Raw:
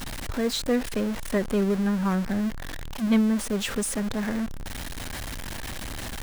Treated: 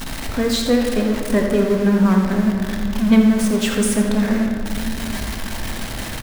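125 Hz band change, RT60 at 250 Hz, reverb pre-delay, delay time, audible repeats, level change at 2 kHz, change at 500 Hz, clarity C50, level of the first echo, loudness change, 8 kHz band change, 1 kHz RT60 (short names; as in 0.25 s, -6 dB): +8.5 dB, 4.4 s, 4 ms, 84 ms, 1, +7.5 dB, +8.5 dB, 2.5 dB, -9.5 dB, +8.5 dB, +6.5 dB, 2.3 s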